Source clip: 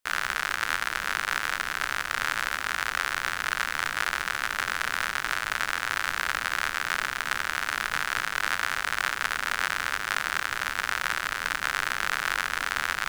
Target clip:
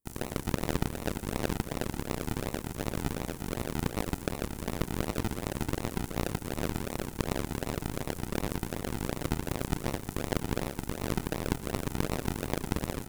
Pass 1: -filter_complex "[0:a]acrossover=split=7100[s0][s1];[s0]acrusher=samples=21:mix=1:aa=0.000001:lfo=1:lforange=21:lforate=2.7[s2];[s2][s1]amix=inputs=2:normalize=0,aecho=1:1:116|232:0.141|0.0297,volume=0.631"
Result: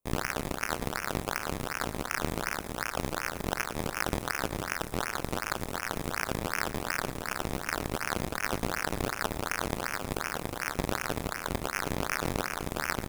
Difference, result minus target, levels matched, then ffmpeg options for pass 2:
decimation with a swept rate: distortion -13 dB
-filter_complex "[0:a]acrossover=split=7100[s0][s1];[s0]acrusher=samples=54:mix=1:aa=0.000001:lfo=1:lforange=54:lforate=2.7[s2];[s2][s1]amix=inputs=2:normalize=0,aecho=1:1:116|232:0.141|0.0297,volume=0.631"

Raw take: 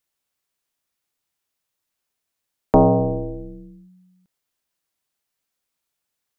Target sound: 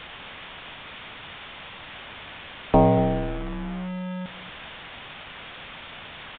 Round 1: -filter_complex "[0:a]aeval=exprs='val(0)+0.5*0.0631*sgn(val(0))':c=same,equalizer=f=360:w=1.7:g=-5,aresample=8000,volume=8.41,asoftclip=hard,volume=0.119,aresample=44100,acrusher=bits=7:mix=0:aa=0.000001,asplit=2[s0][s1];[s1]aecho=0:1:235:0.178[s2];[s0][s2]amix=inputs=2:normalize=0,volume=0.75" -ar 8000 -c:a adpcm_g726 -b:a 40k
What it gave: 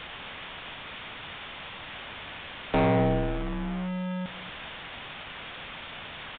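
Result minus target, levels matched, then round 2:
overload inside the chain: distortion +33 dB
-filter_complex "[0:a]aeval=exprs='val(0)+0.5*0.0631*sgn(val(0))':c=same,equalizer=f=360:w=1.7:g=-5,aresample=8000,volume=2.24,asoftclip=hard,volume=0.447,aresample=44100,acrusher=bits=7:mix=0:aa=0.000001,asplit=2[s0][s1];[s1]aecho=0:1:235:0.178[s2];[s0][s2]amix=inputs=2:normalize=0,volume=0.75" -ar 8000 -c:a adpcm_g726 -b:a 40k

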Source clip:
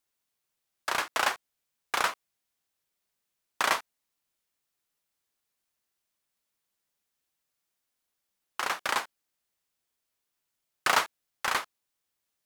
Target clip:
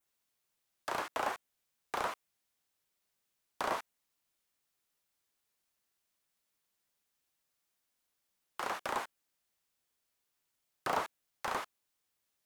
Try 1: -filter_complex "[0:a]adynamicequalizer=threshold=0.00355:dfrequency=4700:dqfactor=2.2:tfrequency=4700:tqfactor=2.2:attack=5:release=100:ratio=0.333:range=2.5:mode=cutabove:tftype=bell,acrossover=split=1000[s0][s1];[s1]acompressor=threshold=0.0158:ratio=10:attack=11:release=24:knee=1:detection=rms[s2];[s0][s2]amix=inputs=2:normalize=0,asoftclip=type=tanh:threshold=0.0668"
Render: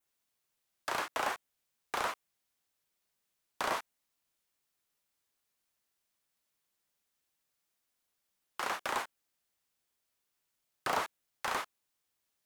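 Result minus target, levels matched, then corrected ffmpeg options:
compression: peak gain reduction -5.5 dB
-filter_complex "[0:a]adynamicequalizer=threshold=0.00355:dfrequency=4700:dqfactor=2.2:tfrequency=4700:tqfactor=2.2:attack=5:release=100:ratio=0.333:range=2.5:mode=cutabove:tftype=bell,acrossover=split=1000[s0][s1];[s1]acompressor=threshold=0.00794:ratio=10:attack=11:release=24:knee=1:detection=rms[s2];[s0][s2]amix=inputs=2:normalize=0,asoftclip=type=tanh:threshold=0.0668"

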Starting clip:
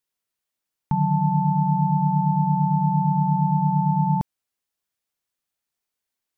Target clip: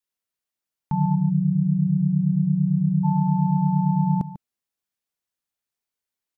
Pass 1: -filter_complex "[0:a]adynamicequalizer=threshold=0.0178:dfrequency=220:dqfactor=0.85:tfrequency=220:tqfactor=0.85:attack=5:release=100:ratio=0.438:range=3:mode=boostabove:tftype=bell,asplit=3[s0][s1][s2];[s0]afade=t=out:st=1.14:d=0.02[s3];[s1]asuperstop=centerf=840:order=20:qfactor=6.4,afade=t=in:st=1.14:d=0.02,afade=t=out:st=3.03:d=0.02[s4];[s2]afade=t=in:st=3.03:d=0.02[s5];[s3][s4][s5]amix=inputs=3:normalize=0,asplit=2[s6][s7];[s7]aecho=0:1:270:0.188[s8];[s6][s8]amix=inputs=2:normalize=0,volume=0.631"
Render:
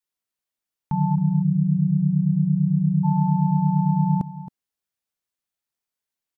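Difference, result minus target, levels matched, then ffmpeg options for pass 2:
echo 124 ms late
-filter_complex "[0:a]adynamicequalizer=threshold=0.0178:dfrequency=220:dqfactor=0.85:tfrequency=220:tqfactor=0.85:attack=5:release=100:ratio=0.438:range=3:mode=boostabove:tftype=bell,asplit=3[s0][s1][s2];[s0]afade=t=out:st=1.14:d=0.02[s3];[s1]asuperstop=centerf=840:order=20:qfactor=6.4,afade=t=in:st=1.14:d=0.02,afade=t=out:st=3.03:d=0.02[s4];[s2]afade=t=in:st=3.03:d=0.02[s5];[s3][s4][s5]amix=inputs=3:normalize=0,asplit=2[s6][s7];[s7]aecho=0:1:146:0.188[s8];[s6][s8]amix=inputs=2:normalize=0,volume=0.631"

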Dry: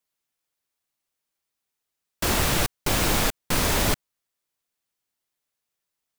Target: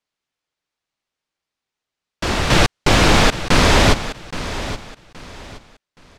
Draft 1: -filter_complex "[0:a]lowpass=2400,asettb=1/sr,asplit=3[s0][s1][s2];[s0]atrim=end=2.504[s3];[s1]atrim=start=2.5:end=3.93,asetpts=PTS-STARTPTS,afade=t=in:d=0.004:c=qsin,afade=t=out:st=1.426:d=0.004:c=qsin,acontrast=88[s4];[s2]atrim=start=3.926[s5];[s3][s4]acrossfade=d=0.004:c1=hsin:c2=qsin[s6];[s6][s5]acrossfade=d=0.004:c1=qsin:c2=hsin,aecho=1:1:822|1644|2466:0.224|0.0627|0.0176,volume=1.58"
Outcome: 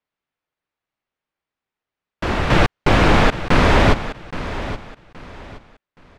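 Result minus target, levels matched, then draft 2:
4 kHz band -5.5 dB
-filter_complex "[0:a]lowpass=5100,asettb=1/sr,asplit=3[s0][s1][s2];[s0]atrim=end=2.504[s3];[s1]atrim=start=2.5:end=3.93,asetpts=PTS-STARTPTS,afade=t=in:d=0.004:c=qsin,afade=t=out:st=1.426:d=0.004:c=qsin,acontrast=88[s4];[s2]atrim=start=3.926[s5];[s3][s4]acrossfade=d=0.004:c1=hsin:c2=qsin[s6];[s6][s5]acrossfade=d=0.004:c1=qsin:c2=hsin,aecho=1:1:822|1644|2466:0.224|0.0627|0.0176,volume=1.58"

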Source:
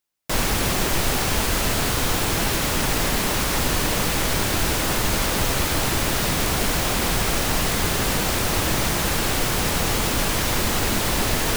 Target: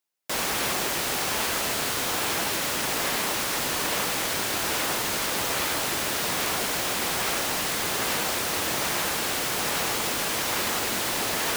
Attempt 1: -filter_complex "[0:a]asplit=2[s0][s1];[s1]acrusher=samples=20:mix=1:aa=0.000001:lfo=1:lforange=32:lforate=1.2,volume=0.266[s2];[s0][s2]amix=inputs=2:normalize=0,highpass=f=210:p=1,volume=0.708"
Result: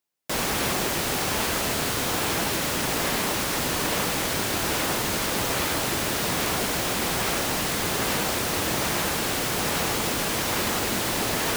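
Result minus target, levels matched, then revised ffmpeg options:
250 Hz band +4.5 dB
-filter_complex "[0:a]asplit=2[s0][s1];[s1]acrusher=samples=20:mix=1:aa=0.000001:lfo=1:lforange=32:lforate=1.2,volume=0.266[s2];[s0][s2]amix=inputs=2:normalize=0,highpass=f=570:p=1,volume=0.708"

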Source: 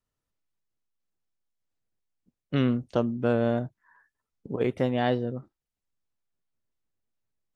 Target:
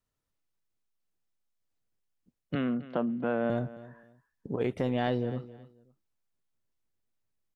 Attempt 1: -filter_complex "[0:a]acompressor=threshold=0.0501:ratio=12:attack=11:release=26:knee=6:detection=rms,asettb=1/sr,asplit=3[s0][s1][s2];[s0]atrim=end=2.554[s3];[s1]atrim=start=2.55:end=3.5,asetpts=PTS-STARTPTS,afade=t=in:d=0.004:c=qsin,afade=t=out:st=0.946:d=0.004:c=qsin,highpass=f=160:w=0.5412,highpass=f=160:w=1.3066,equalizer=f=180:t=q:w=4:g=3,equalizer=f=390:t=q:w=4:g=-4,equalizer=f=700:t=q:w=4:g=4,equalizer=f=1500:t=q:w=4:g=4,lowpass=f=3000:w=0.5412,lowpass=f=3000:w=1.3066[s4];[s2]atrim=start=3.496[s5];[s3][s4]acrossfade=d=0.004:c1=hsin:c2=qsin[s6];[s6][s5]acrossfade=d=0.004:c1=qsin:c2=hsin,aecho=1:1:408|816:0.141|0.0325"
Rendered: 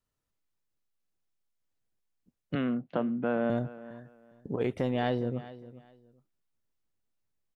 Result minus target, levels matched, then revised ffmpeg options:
echo 140 ms late
-filter_complex "[0:a]acompressor=threshold=0.0501:ratio=12:attack=11:release=26:knee=6:detection=rms,asettb=1/sr,asplit=3[s0][s1][s2];[s0]atrim=end=2.554[s3];[s1]atrim=start=2.55:end=3.5,asetpts=PTS-STARTPTS,afade=t=in:d=0.004:c=qsin,afade=t=out:st=0.946:d=0.004:c=qsin,highpass=f=160:w=0.5412,highpass=f=160:w=1.3066,equalizer=f=180:t=q:w=4:g=3,equalizer=f=390:t=q:w=4:g=-4,equalizer=f=700:t=q:w=4:g=4,equalizer=f=1500:t=q:w=4:g=4,lowpass=f=3000:w=0.5412,lowpass=f=3000:w=1.3066[s4];[s2]atrim=start=3.496[s5];[s3][s4]acrossfade=d=0.004:c1=hsin:c2=qsin[s6];[s6][s5]acrossfade=d=0.004:c1=qsin:c2=hsin,aecho=1:1:268|536:0.141|0.0325"

